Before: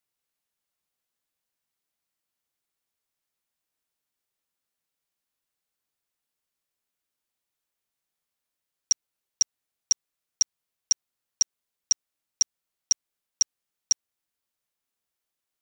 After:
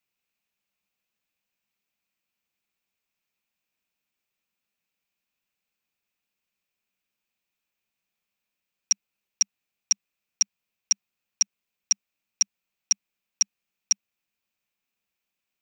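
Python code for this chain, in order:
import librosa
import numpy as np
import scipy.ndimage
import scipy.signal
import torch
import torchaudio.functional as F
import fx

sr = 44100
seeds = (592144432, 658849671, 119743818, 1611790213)

y = fx.graphic_eq_31(x, sr, hz=(200, 2500, 10000), db=(9, 11, -10))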